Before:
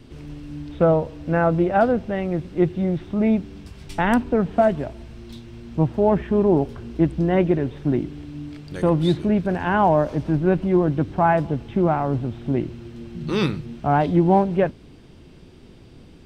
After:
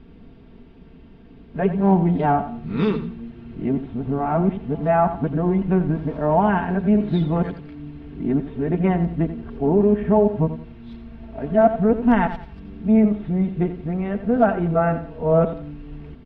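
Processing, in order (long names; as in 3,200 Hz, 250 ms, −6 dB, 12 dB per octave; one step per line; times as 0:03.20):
played backwards from end to start
high-frequency loss of the air 380 metres
notch filter 520 Hz, Q 12
comb filter 4.4 ms, depth 55%
repeating echo 87 ms, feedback 31%, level −11.5 dB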